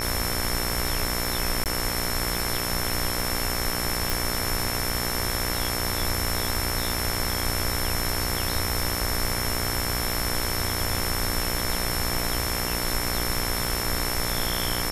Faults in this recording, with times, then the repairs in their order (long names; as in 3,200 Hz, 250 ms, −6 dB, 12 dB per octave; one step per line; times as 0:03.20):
mains buzz 60 Hz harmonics 39 −31 dBFS
surface crackle 45 per second −33 dBFS
whistle 5,400 Hz −32 dBFS
0:01.64–0:01.66: drop-out 18 ms
0:04.10: click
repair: click removal
notch filter 5,400 Hz, Q 30
hum removal 60 Hz, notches 39
repair the gap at 0:01.64, 18 ms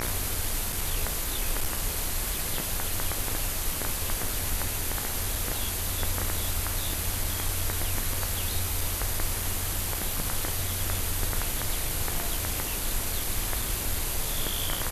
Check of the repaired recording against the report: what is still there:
none of them is left